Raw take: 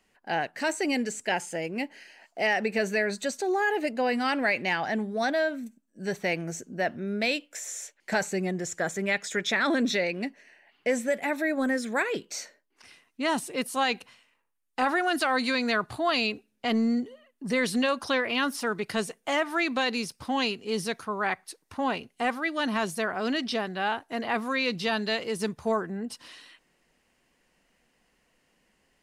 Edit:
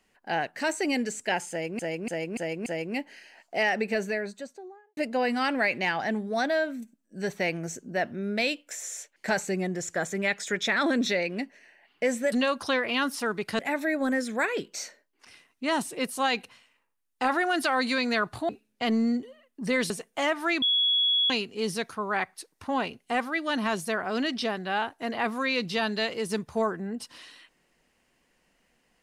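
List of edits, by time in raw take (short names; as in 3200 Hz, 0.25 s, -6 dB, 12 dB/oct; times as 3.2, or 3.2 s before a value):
1.5–1.79 loop, 5 plays
2.56–3.81 studio fade out
16.06–16.32 cut
17.73–19 move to 11.16
19.72–20.4 bleep 3360 Hz -20.5 dBFS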